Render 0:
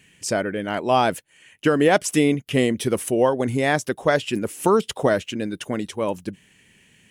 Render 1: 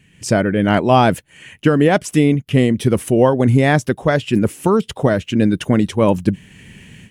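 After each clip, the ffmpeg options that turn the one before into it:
ffmpeg -i in.wav -af "bass=frequency=250:gain=10,treble=frequency=4000:gain=-4,dynaudnorm=framelen=110:gausssize=3:maxgain=13dB,volume=-1dB" out.wav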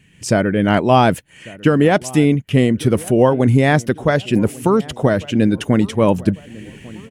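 ffmpeg -i in.wav -filter_complex "[0:a]asplit=2[link_01][link_02];[link_02]adelay=1148,lowpass=frequency=1600:poles=1,volume=-21dB,asplit=2[link_03][link_04];[link_04]adelay=1148,lowpass=frequency=1600:poles=1,volume=0.49,asplit=2[link_05][link_06];[link_06]adelay=1148,lowpass=frequency=1600:poles=1,volume=0.49,asplit=2[link_07][link_08];[link_08]adelay=1148,lowpass=frequency=1600:poles=1,volume=0.49[link_09];[link_01][link_03][link_05][link_07][link_09]amix=inputs=5:normalize=0" out.wav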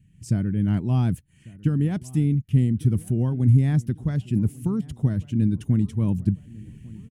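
ffmpeg -i in.wav -af "firequalizer=gain_entry='entry(110,0);entry(540,-28);entry(760,-24);entry(9300,-13)':delay=0.05:min_phase=1" out.wav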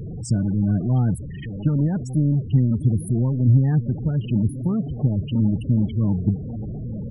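ffmpeg -i in.wav -af "aeval=exprs='val(0)+0.5*0.0531*sgn(val(0))':channel_layout=same,afftfilt=real='re*gte(hypot(re,im),0.0501)':imag='im*gte(hypot(re,im),0.0501)':win_size=1024:overlap=0.75" -ar 44100 -c:a aac -b:a 128k out.aac

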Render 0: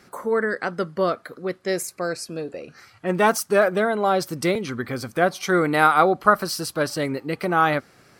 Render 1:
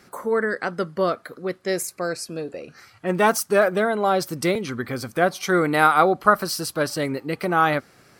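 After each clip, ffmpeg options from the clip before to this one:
ffmpeg -i in.wav -af "highshelf=frequency=9900:gain=3.5" out.wav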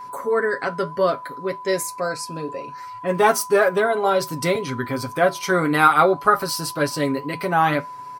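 ffmpeg -i in.wav -af "aecho=1:1:7.3:0.67,aeval=exprs='val(0)+0.0224*sin(2*PI*1000*n/s)':channel_layout=same,flanger=delay=9.1:depth=2.2:regen=-69:speed=1.9:shape=sinusoidal,volume=4dB" out.wav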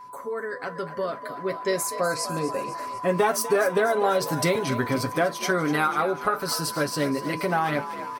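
ffmpeg -i in.wav -filter_complex "[0:a]acompressor=threshold=-20dB:ratio=6,asplit=8[link_01][link_02][link_03][link_04][link_05][link_06][link_07][link_08];[link_02]adelay=247,afreqshift=49,volume=-13.5dB[link_09];[link_03]adelay=494,afreqshift=98,volume=-17.8dB[link_10];[link_04]adelay=741,afreqshift=147,volume=-22.1dB[link_11];[link_05]adelay=988,afreqshift=196,volume=-26.4dB[link_12];[link_06]adelay=1235,afreqshift=245,volume=-30.7dB[link_13];[link_07]adelay=1482,afreqshift=294,volume=-35dB[link_14];[link_08]adelay=1729,afreqshift=343,volume=-39.3dB[link_15];[link_01][link_09][link_10][link_11][link_12][link_13][link_14][link_15]amix=inputs=8:normalize=0,dynaudnorm=framelen=610:gausssize=5:maxgain=11.5dB,volume=-7.5dB" out.wav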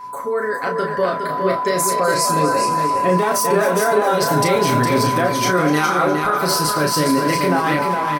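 ffmpeg -i in.wav -filter_complex "[0:a]alimiter=limit=-19dB:level=0:latency=1:release=15,asplit=2[link_01][link_02];[link_02]adelay=33,volume=-5dB[link_03];[link_01][link_03]amix=inputs=2:normalize=0,asplit=2[link_04][link_05];[link_05]aecho=0:1:411:0.531[link_06];[link_04][link_06]amix=inputs=2:normalize=0,volume=8dB" out.wav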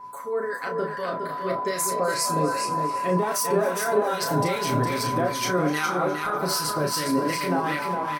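ffmpeg -i in.wav -filter_complex "[0:a]flanger=delay=5:depth=6.5:regen=-84:speed=0.33:shape=triangular,acrossover=split=1100[link_01][link_02];[link_01]aeval=exprs='val(0)*(1-0.7/2+0.7/2*cos(2*PI*2.5*n/s))':channel_layout=same[link_03];[link_02]aeval=exprs='val(0)*(1-0.7/2-0.7/2*cos(2*PI*2.5*n/s))':channel_layout=same[link_04];[link_03][link_04]amix=inputs=2:normalize=0" out.wav

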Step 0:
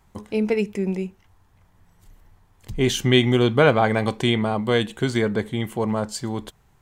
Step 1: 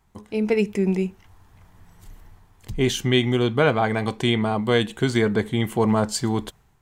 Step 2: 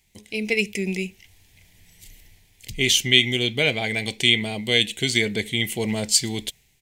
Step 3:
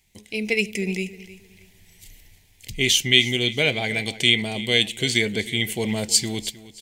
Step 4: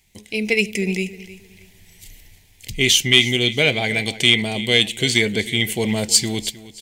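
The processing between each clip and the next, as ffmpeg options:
ffmpeg -i in.wav -af "bandreject=frequency=550:width=12,dynaudnorm=framelen=130:gausssize=7:maxgain=11.5dB,volume=-5dB" out.wav
ffmpeg -i in.wav -af "firequalizer=gain_entry='entry(600,0);entry(1200,-16);entry(2100,15)':delay=0.05:min_phase=1,volume=-5.5dB" out.wav
ffmpeg -i in.wav -af "aecho=1:1:312|624|936:0.141|0.0381|0.0103" out.wav
ffmpeg -i in.wav -af "asoftclip=type=tanh:threshold=-4dB,volume=4dB" out.wav

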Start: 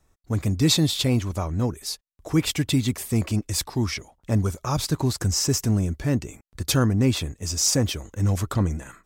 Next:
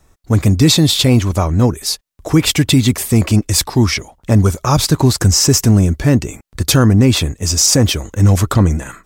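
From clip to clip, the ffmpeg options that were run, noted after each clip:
ffmpeg -i in.wav -af "alimiter=level_in=13dB:limit=-1dB:release=50:level=0:latency=1,volume=-1dB" out.wav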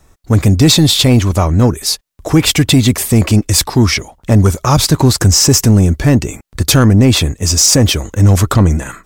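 ffmpeg -i in.wav -af "acontrast=25,volume=-1dB" out.wav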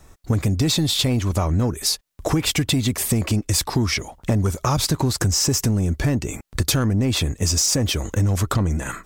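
ffmpeg -i in.wav -af "acompressor=threshold=-18dB:ratio=6" out.wav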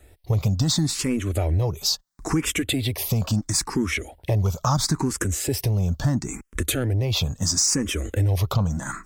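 ffmpeg -i in.wav -filter_complex "[0:a]asplit=2[link_01][link_02];[link_02]afreqshift=0.74[link_03];[link_01][link_03]amix=inputs=2:normalize=1" out.wav

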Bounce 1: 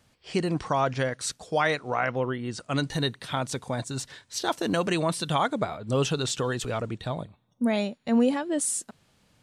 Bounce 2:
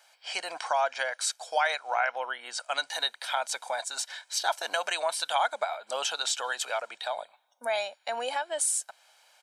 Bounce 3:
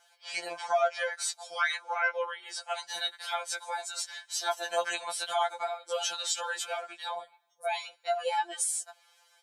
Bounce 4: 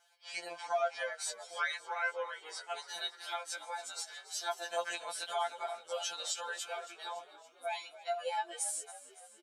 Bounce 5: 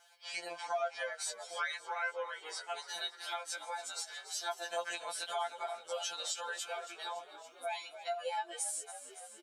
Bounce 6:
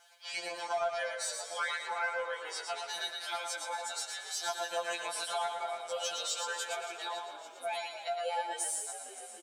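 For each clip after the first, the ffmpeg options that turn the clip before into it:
ffmpeg -i in.wav -af "highpass=frequency=650:width=0.5412,highpass=frequency=650:width=1.3066,aecho=1:1:1.3:0.51,acompressor=threshold=-40dB:ratio=1.5,volume=5.5dB" out.wav
ffmpeg -i in.wav -af "afftfilt=real='re*2.83*eq(mod(b,8),0)':imag='im*2.83*eq(mod(b,8),0)':win_size=2048:overlap=0.75" out.wav
ffmpeg -i in.wav -filter_complex "[0:a]asplit=7[link_01][link_02][link_03][link_04][link_05][link_06][link_07];[link_02]adelay=281,afreqshift=-42,volume=-16.5dB[link_08];[link_03]adelay=562,afreqshift=-84,volume=-20.9dB[link_09];[link_04]adelay=843,afreqshift=-126,volume=-25.4dB[link_10];[link_05]adelay=1124,afreqshift=-168,volume=-29.8dB[link_11];[link_06]adelay=1405,afreqshift=-210,volume=-34.2dB[link_12];[link_07]adelay=1686,afreqshift=-252,volume=-38.7dB[link_13];[link_01][link_08][link_09][link_10][link_11][link_12][link_13]amix=inputs=7:normalize=0,volume=-6dB" out.wav
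ffmpeg -i in.wav -af "acompressor=threshold=-52dB:ratio=1.5,volume=5.5dB" out.wav
ffmpeg -i in.wav -filter_complex "[0:a]asplit=2[link_01][link_02];[link_02]asoftclip=type=hard:threshold=-36dB,volume=-10dB[link_03];[link_01][link_03]amix=inputs=2:normalize=0,aecho=1:1:115|230|345|460:0.562|0.191|0.065|0.0221" out.wav

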